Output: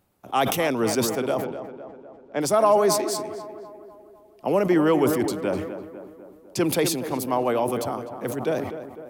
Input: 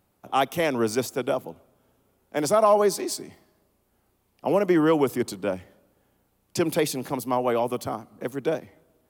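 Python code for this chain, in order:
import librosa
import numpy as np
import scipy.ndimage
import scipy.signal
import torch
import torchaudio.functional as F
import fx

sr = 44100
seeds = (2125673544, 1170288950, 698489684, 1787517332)

y = fx.gaussian_blur(x, sr, sigma=1.6, at=(1.44, 2.41))
y = fx.echo_tape(y, sr, ms=251, feedback_pct=62, wet_db=-9, lp_hz=1700.0, drive_db=12.0, wow_cents=22)
y = fx.sustainer(y, sr, db_per_s=54.0)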